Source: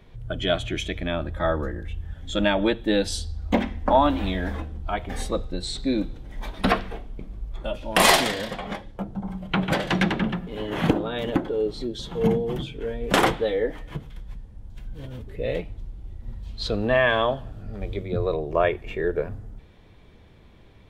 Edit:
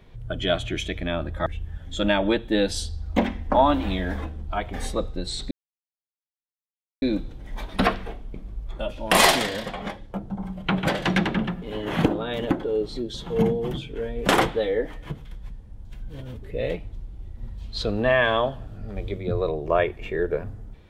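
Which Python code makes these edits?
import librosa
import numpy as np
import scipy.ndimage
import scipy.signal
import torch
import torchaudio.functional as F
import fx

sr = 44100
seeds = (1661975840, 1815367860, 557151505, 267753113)

y = fx.edit(x, sr, fx.cut(start_s=1.46, length_s=0.36),
    fx.insert_silence(at_s=5.87, length_s=1.51), tone=tone)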